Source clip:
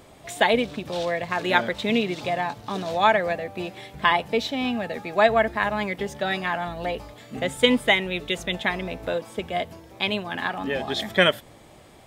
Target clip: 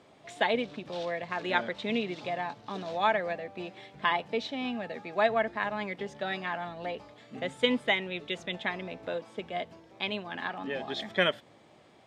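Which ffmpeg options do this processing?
ffmpeg -i in.wav -af "highpass=140,lowpass=5400,volume=-7.5dB" out.wav

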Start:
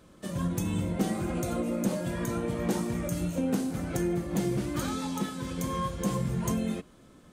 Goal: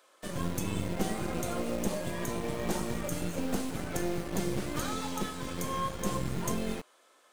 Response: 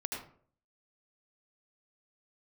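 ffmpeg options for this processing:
-filter_complex "[0:a]asettb=1/sr,asplit=3[link_01][link_02][link_03];[link_01]atrim=end=1.744[link_04];[link_02]atrim=start=1.74:end=2.71,asetpts=PTS-STARTPTS,afade=type=in:duration=0.004:curve=qsin,afade=type=out:start_time=0.966:duration=0.004:curve=qsin,bandreject=frequency=1400:width=5.1[link_05];[link_03]atrim=start=2.706[link_06];[link_04][link_05]acrossfade=duration=0.004:curve1=hsin:curve2=qsin[link_07];[link_07][link_06]acrossfade=duration=0.004:curve1=qsin:curve2=hsin,acrossover=split=510|1700[link_08][link_09][link_10];[link_08]acrusher=bits=4:dc=4:mix=0:aa=0.000001[link_11];[link_11][link_09][link_10]amix=inputs=3:normalize=0"

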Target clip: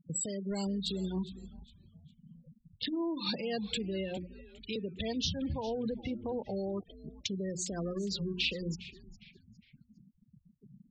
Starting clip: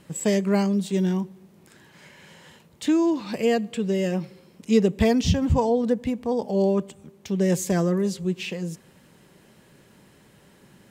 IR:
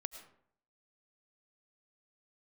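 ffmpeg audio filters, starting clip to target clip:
-filter_complex "[0:a]acompressor=threshold=-30dB:ratio=20,asettb=1/sr,asplit=3[link_01][link_02][link_03];[link_01]atrim=end=4.174[link_04];[link_02]atrim=start=4.17:end=4.76,asetpts=PTS-STARTPTS,afade=type=in:duration=0.004:curve=qsin,afade=type=out:start_time=0.586:duration=0.004:curve=qsin,acrossover=split=380 4800:gain=0.178 1 0.178[link_05][link_06][link_07];[link_05][link_06][link_07]amix=inputs=3:normalize=0[link_08];[link_03]atrim=start=4.756[link_09];[link_04][link_08]acrossfade=duration=0.004:curve1=hsin:curve2=qsin[link_10];[link_10][link_09]acrossfade=duration=0.004:curve1=qsin:curve2=hsin,bandreject=frequency=60:width_type=h:width=6,bandreject=frequency=120:width_type=h:width=6,bandreject=frequency=180:width_type=h:width=6,bandreject=frequency=240:width_type=h:width=6,bandreject=frequency=300:width_type=h:width=6,bandreject=frequency=360:width_type=h:width=6,asettb=1/sr,asplit=3[link_11][link_12][link_13];[link_11]atrim=end=1.164[link_14];[link_12]atrim=start=1.16:end=3.01,asetpts=PTS-STARTPTS,afade=type=in:duration=0.004:curve=qsin,afade=type=out:start_time=1.846:duration=0.004:curve=qsin,adynamicsmooth=sensitivity=6.5:basefreq=550[link_15];[link_13]atrim=start=3.006[link_16];[link_14][link_15]acrossfade=duration=0.004:curve1=hsin:curve2=qsin[link_17];[link_17][link_16]acrossfade=duration=0.004:curve1=qsin:curve2=hsin,asettb=1/sr,asplit=3[link_18][link_19][link_20];[link_18]atrim=end=6.384[link_21];[link_19]atrim=start=6.38:end=7.32,asetpts=PTS-STARTPTS,afade=type=in:duration=0.004:curve=qsin,afade=type=out:start_time=0.936:duration=0.004:curve=qsin,aeval=exprs='sgn(val(0))*max(abs(val(0))-0.00266,0)':channel_layout=same[link_22];[link_20]atrim=start=7.316[link_23];[link_21][link_22]acrossfade=duration=0.004:curve1=hsin:curve2=qsin[link_24];[link_24][link_23]acrossfade=duration=0.004:curve1=qsin:curve2=hsin,alimiter=level_in=6.5dB:limit=-24dB:level=0:latency=1:release=131,volume=-6.5dB,equalizer=frequency=4000:width=1.3:gain=12.5,afftfilt=real='re*gte(hypot(re,im),0.0141)':imag='im*gte(hypot(re,im),0.0141)':win_size=1024:overlap=0.75,asplit=4[link_25][link_26][link_27][link_28];[link_26]adelay=408,afreqshift=-140,volume=-17dB[link_29];[link_27]adelay=816,afreqshift=-280,volume=-26.4dB[link_30];[link_28]adelay=1224,afreqshift=-420,volume=-35.7dB[link_31];[link_25][link_29][link_30][link_31]amix=inputs=4:normalize=0,volume=2.5dB"

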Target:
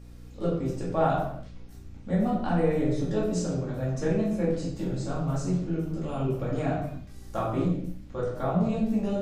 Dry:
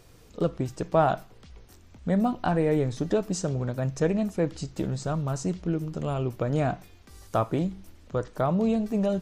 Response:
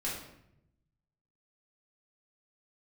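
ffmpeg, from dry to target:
-filter_complex "[0:a]bandreject=frequency=50.33:width_type=h:width=4,bandreject=frequency=100.66:width_type=h:width=4,bandreject=frequency=150.99:width_type=h:width=4,bandreject=frequency=201.32:width_type=h:width=4,bandreject=frequency=251.65:width_type=h:width=4,bandreject=frequency=301.98:width_type=h:width=4,bandreject=frequency=352.31:width_type=h:width=4,bandreject=frequency=402.64:width_type=h:width=4,bandreject=frequency=452.97:width_type=h:width=4,bandreject=frequency=503.3:width_type=h:width=4,bandreject=frequency=553.63:width_type=h:width=4,bandreject=frequency=603.96:width_type=h:width=4[link_01];[1:a]atrim=start_sample=2205,afade=type=out:start_time=0.38:duration=0.01,atrim=end_sample=17199[link_02];[link_01][link_02]afir=irnorm=-1:irlink=0,aeval=exprs='val(0)+0.01*(sin(2*PI*60*n/s)+sin(2*PI*2*60*n/s)/2+sin(2*PI*3*60*n/s)/3+sin(2*PI*4*60*n/s)/4+sin(2*PI*5*60*n/s)/5)':channel_layout=same,volume=-5.5dB"

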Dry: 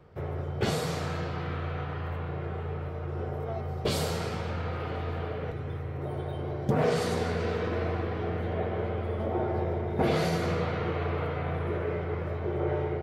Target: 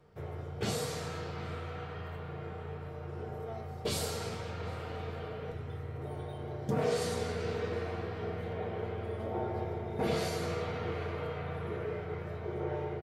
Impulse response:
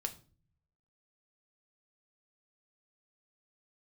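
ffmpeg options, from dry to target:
-filter_complex "[0:a]equalizer=frequency=8700:width=0.49:gain=8,asplit=2[link_01][link_02];[link_02]adelay=758,volume=-14dB,highshelf=frequency=4000:gain=-17.1[link_03];[link_01][link_03]amix=inputs=2:normalize=0[link_04];[1:a]atrim=start_sample=2205,atrim=end_sample=4410[link_05];[link_04][link_05]afir=irnorm=-1:irlink=0,volume=-6.5dB"

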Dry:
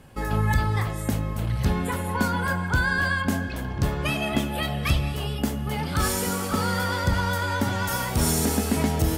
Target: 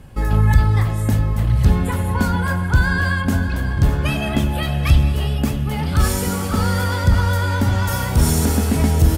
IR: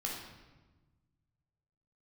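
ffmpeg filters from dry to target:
-filter_complex "[0:a]lowshelf=frequency=130:gain=12,asplit=2[link_01][link_02];[link_02]asoftclip=type=tanh:threshold=-14.5dB,volume=-10dB[link_03];[link_01][link_03]amix=inputs=2:normalize=0,aecho=1:1:604|1208|1812|2416:0.251|0.103|0.0422|0.0173"

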